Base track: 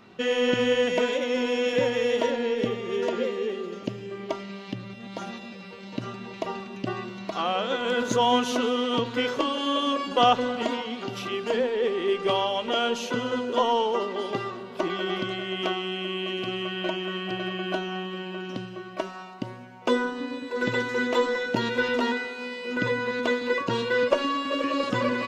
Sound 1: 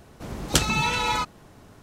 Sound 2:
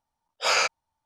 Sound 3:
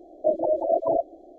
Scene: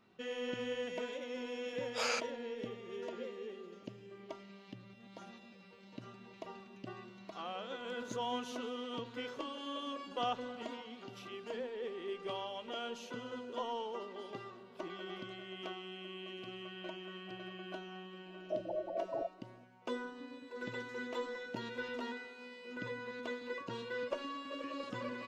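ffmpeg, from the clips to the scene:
-filter_complex "[0:a]volume=0.15[s0];[2:a]atrim=end=1.05,asetpts=PTS-STARTPTS,volume=0.211,afade=t=in:d=0.004:c=hsin,afade=t=out:st=1.046:d=0.004:c=hsin,adelay=1530[s1];[3:a]atrim=end=1.38,asetpts=PTS-STARTPTS,volume=0.168,afade=t=in:d=0.004:c=hsin,afade=t=out:st=1.376:d=0.004:c=hsin,adelay=18260[s2];[s0][s1][s2]amix=inputs=3:normalize=0"

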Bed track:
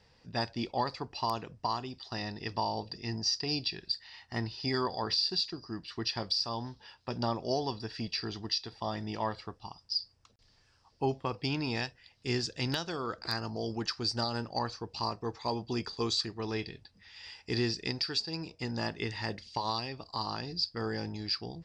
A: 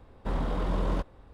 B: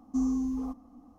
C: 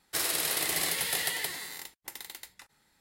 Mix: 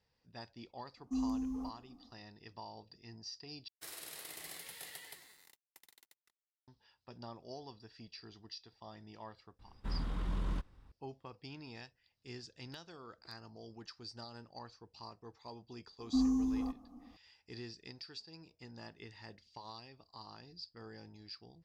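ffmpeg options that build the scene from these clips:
-filter_complex "[2:a]asplit=2[s0][s1];[0:a]volume=0.15[s2];[s0]dynaudnorm=f=100:g=3:m=2.24[s3];[3:a]aeval=exprs='sgn(val(0))*max(abs(val(0))-0.00473,0)':c=same[s4];[1:a]equalizer=f=570:t=o:w=1.5:g=-12.5[s5];[s2]asplit=2[s6][s7];[s6]atrim=end=3.684[s8];[s4]atrim=end=3,asetpts=PTS-STARTPTS,volume=0.133[s9];[s7]atrim=start=6.676[s10];[s3]atrim=end=1.18,asetpts=PTS-STARTPTS,volume=0.2,afade=t=in:d=0.004:c=hsin,afade=t=out:st=1.176:d=0.004:c=hsin,adelay=970[s11];[s5]atrim=end=1.33,asetpts=PTS-STARTPTS,volume=0.473,afade=t=in:d=0.004:c=hsin,afade=t=out:st=1.326:d=0.004:c=hsin,adelay=9590[s12];[s1]atrim=end=1.18,asetpts=PTS-STARTPTS,volume=0.75,afade=t=in:d=0.004:c=hsin,afade=t=out:st=1.176:d=0.004:c=hsin,adelay=15990[s13];[s8][s9]acrossfade=d=0.004:c1=hsin:c2=hsin[s14];[s14][s10]acrossfade=d=0.004:c1=hsin:c2=hsin[s15];[s15][s11][s12][s13]amix=inputs=4:normalize=0"

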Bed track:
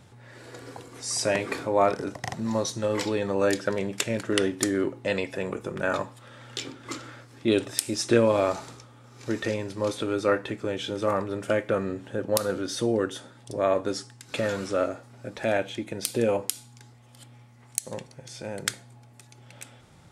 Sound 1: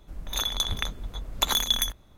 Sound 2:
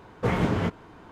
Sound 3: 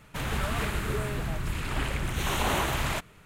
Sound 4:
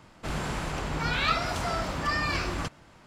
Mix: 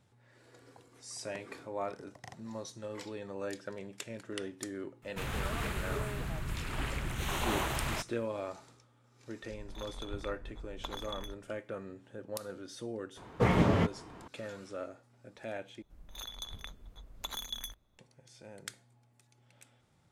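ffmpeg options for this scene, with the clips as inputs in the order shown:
-filter_complex "[1:a]asplit=2[s0][s1];[0:a]volume=0.168[s2];[s0]lowpass=f=1100:p=1[s3];[2:a]bandreject=f=1500:w=15[s4];[s2]asplit=2[s5][s6];[s5]atrim=end=15.824[s7];[s1]atrim=end=2.17,asetpts=PTS-STARTPTS,volume=0.158[s8];[s6]atrim=start=17.986[s9];[3:a]atrim=end=3.25,asetpts=PTS-STARTPTS,volume=0.501,afade=t=in:d=0.004:c=hsin,afade=t=out:st=3.246:d=0.004:c=hsin,adelay=5020[s10];[s3]atrim=end=2.17,asetpts=PTS-STARTPTS,volume=0.282,afade=t=in:d=0.004:c=hsin,afade=t=out:st=2.166:d=0.004:c=hsin,adelay=9420[s11];[s4]atrim=end=1.11,asetpts=PTS-STARTPTS,volume=0.841,afade=t=in:d=0.004:c=hsin,afade=t=out:st=1.106:d=0.004:c=hsin,adelay=13170[s12];[s7][s8]acrossfade=d=0.004:c1=hsin:c2=hsin[s13];[s13][s9]acrossfade=d=0.004:c1=hsin:c2=hsin[s14];[s14][s10][s11][s12]amix=inputs=4:normalize=0"

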